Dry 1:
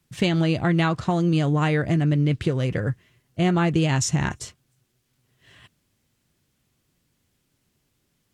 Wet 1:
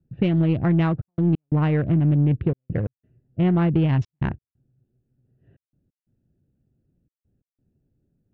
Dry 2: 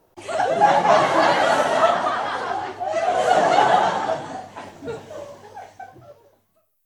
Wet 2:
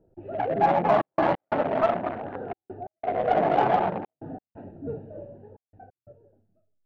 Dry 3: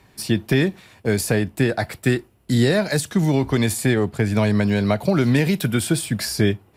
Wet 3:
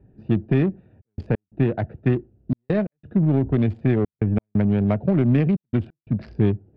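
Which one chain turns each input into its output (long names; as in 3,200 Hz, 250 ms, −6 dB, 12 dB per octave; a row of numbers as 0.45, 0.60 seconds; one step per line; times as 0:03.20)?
adaptive Wiener filter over 41 samples
low-pass filter 3,100 Hz 24 dB per octave
tilt shelving filter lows +4.5 dB, about 650 Hz
in parallel at −4.5 dB: soft clipping −18.5 dBFS
on the sum: gate pattern "xxxxxx.x." 89 BPM −60 dB
normalise the peak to −9 dBFS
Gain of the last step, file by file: −4.0, −5.5, −5.5 decibels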